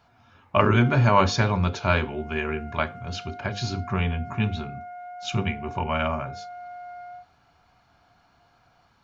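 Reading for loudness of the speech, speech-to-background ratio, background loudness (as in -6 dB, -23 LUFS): -25.0 LUFS, 16.0 dB, -41.0 LUFS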